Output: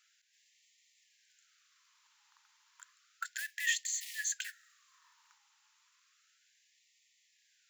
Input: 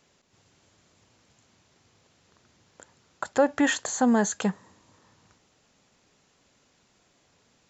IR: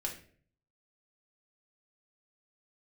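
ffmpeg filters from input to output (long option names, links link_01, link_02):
-af "acrusher=bits=5:mode=log:mix=0:aa=0.000001,afftfilt=real='re*gte(b*sr/1024,800*pow(1800/800,0.5+0.5*sin(2*PI*0.32*pts/sr)))':imag='im*gte(b*sr/1024,800*pow(1800/800,0.5+0.5*sin(2*PI*0.32*pts/sr)))':win_size=1024:overlap=0.75,volume=-3.5dB"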